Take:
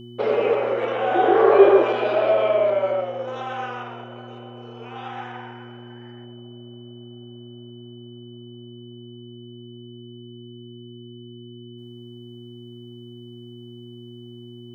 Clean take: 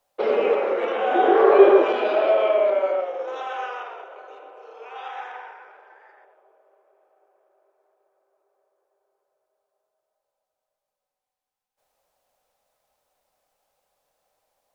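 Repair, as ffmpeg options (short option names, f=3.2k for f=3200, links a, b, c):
-af "bandreject=f=119.8:t=h:w=4,bandreject=f=239.6:t=h:w=4,bandreject=f=359.4:t=h:w=4,bandreject=f=3k:w=30"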